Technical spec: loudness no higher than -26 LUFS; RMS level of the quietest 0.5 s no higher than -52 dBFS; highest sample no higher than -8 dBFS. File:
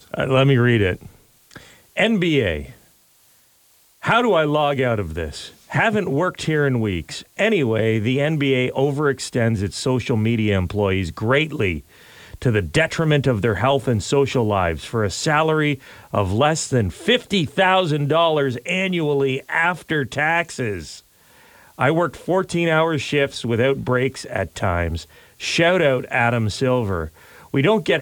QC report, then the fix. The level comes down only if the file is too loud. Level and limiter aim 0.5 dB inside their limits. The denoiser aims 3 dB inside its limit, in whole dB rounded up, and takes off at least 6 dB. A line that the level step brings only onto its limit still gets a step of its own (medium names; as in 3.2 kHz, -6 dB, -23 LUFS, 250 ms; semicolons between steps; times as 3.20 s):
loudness -20.0 LUFS: fail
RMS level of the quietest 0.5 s -56 dBFS: pass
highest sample -6.5 dBFS: fail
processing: trim -6.5 dB